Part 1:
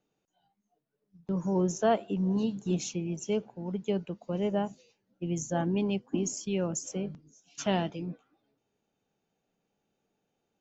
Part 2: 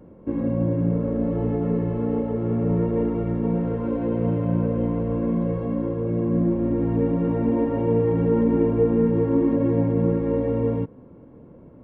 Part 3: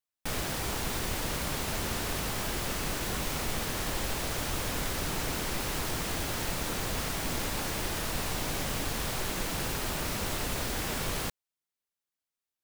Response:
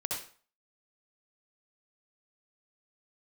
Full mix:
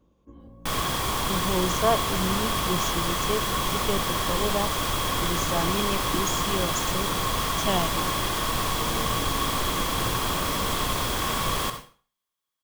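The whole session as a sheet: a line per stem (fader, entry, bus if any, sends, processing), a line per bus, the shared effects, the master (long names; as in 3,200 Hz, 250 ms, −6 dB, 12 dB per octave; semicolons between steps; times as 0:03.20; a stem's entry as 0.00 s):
+2.5 dB, 0.00 s, no send, parametric band 230 Hz −7 dB
−18.5 dB, 0.00 s, no send, sub-octave generator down 2 octaves, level +1 dB; automatic ducking −19 dB, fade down 1.15 s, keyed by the first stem
+1.0 dB, 0.40 s, send −6.5 dB, no processing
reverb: on, RT60 0.45 s, pre-delay 59 ms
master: hollow resonant body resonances 1,100/3,300 Hz, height 14 dB, ringing for 30 ms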